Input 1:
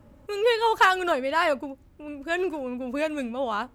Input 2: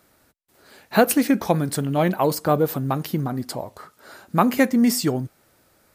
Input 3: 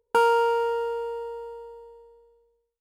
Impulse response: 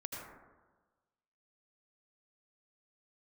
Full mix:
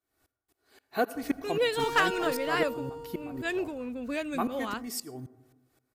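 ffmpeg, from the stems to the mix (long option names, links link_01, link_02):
-filter_complex "[0:a]equalizer=frequency=830:width=1.4:gain=-8,adelay=1150,volume=-3dB[link_01];[1:a]aecho=1:1:2.7:0.57,aeval=exprs='val(0)*pow(10,-24*if(lt(mod(-3.8*n/s,1),2*abs(-3.8)/1000),1-mod(-3.8*n/s,1)/(2*abs(-3.8)/1000),(mod(-3.8*n/s,1)-2*abs(-3.8)/1000)/(1-2*abs(-3.8)/1000))/20)':channel_layout=same,volume=-9.5dB,asplit=2[link_02][link_03];[link_03]volume=-13dB[link_04];[2:a]equalizer=frequency=6600:width=0.52:gain=8.5,volume=27.5dB,asoftclip=hard,volume=-27.5dB,adelay=1650,volume=-6.5dB[link_05];[3:a]atrim=start_sample=2205[link_06];[link_04][link_06]afir=irnorm=-1:irlink=0[link_07];[link_01][link_02][link_05][link_07]amix=inputs=4:normalize=0"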